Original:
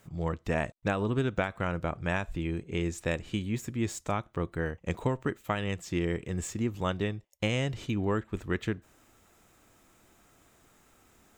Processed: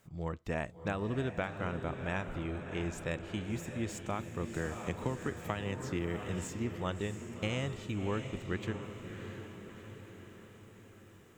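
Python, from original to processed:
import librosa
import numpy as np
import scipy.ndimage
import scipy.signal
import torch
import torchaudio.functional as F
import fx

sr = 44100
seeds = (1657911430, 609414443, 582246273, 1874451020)

y = fx.echo_diffused(x, sr, ms=673, feedback_pct=57, wet_db=-8)
y = fx.band_squash(y, sr, depth_pct=70, at=(4.54, 6.45))
y = y * 10.0 ** (-6.0 / 20.0)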